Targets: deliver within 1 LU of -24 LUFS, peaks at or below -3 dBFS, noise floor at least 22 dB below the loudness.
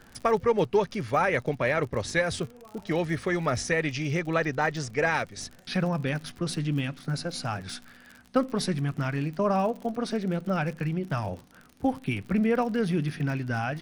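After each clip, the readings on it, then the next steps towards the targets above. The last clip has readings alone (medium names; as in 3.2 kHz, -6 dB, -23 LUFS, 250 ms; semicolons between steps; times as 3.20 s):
tick rate 53 per s; loudness -28.0 LUFS; peak level -11.0 dBFS; loudness target -24.0 LUFS
-> de-click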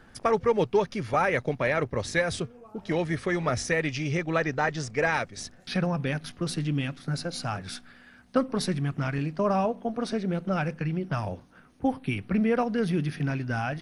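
tick rate 0.22 per s; loudness -28.0 LUFS; peak level -11.0 dBFS; loudness target -24.0 LUFS
-> trim +4 dB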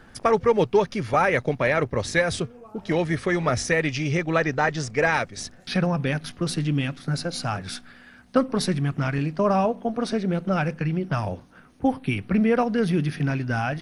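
loudness -24.0 LUFS; peak level -7.0 dBFS; noise floor -50 dBFS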